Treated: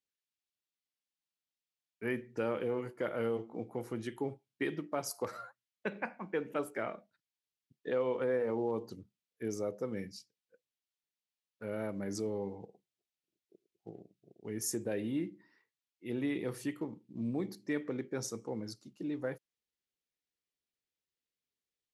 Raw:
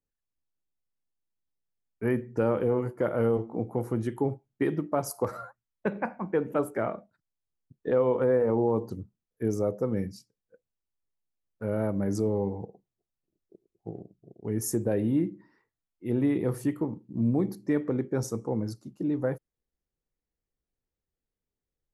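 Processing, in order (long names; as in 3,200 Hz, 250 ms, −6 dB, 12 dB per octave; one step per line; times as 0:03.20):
meter weighting curve D
level −8 dB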